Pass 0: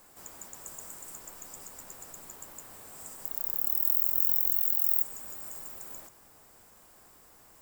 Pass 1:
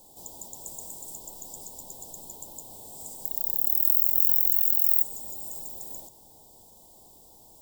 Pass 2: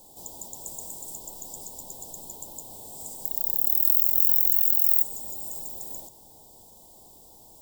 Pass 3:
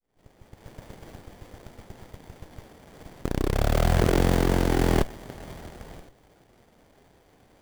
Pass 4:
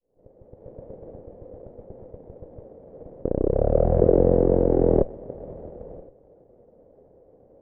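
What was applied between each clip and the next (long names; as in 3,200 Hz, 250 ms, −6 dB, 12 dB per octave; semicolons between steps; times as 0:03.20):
elliptic band-stop filter 900–3,400 Hz, stop band 40 dB; level +4.5 dB
soft clipping −5.5 dBFS, distortion −22 dB; level +2 dB
fade in at the beginning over 0.95 s; windowed peak hold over 33 samples; level −2 dB
low-pass with resonance 520 Hz, resonance Q 4.6; level −1 dB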